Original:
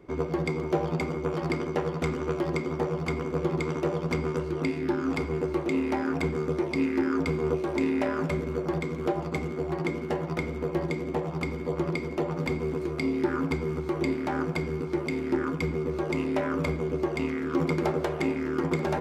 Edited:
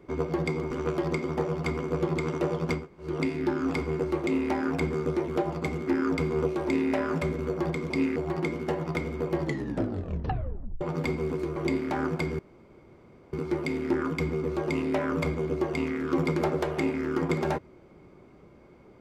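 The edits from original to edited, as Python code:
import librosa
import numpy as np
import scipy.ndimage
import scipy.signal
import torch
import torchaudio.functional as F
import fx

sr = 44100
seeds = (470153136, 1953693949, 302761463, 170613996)

y = fx.edit(x, sr, fx.cut(start_s=0.71, length_s=1.42),
    fx.room_tone_fill(start_s=4.22, length_s=0.25, crossfade_s=0.16),
    fx.swap(start_s=6.7, length_s=0.26, other_s=8.98, other_length_s=0.6),
    fx.tape_stop(start_s=10.82, length_s=1.41),
    fx.cut(start_s=12.98, length_s=0.94),
    fx.insert_room_tone(at_s=14.75, length_s=0.94), tone=tone)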